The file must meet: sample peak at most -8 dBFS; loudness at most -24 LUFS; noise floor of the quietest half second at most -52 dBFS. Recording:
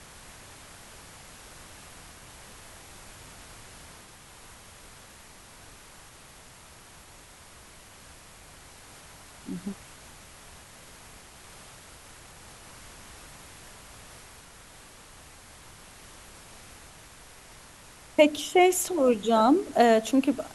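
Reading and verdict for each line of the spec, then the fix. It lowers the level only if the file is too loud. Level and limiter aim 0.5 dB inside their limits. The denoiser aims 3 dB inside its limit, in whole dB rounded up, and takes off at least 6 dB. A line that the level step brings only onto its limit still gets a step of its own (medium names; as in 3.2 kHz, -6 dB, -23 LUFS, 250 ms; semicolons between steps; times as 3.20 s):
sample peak -7.0 dBFS: fail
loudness -23.5 LUFS: fail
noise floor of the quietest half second -51 dBFS: fail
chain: noise reduction 6 dB, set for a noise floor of -51 dBFS; trim -1 dB; peak limiter -8.5 dBFS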